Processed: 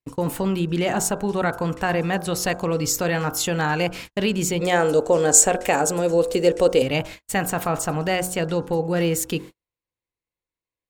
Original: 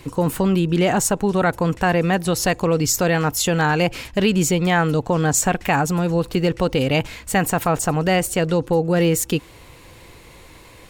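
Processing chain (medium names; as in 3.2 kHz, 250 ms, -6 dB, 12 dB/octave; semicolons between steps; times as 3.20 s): bass shelf 180 Hz -3 dB; de-hum 45.68 Hz, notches 36; gate -32 dBFS, range -45 dB; 4.61–6.82 s: ten-band graphic EQ 125 Hz -9 dB, 500 Hz +11 dB, 1 kHz -3 dB, 8 kHz +11 dB; trim -3 dB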